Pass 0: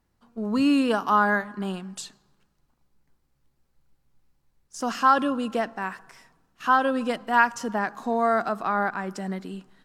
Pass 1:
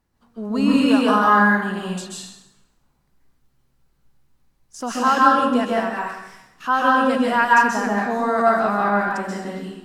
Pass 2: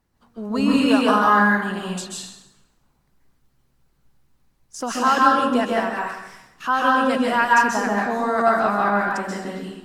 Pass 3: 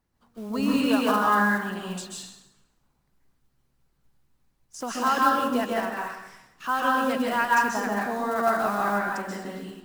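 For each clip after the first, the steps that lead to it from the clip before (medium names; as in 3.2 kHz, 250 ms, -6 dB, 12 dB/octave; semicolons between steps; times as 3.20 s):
plate-style reverb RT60 0.84 s, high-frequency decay 0.9×, pre-delay 120 ms, DRR -4.5 dB
harmonic-percussive split percussive +5 dB; trim -1.5 dB
block-companded coder 5-bit; trim -5.5 dB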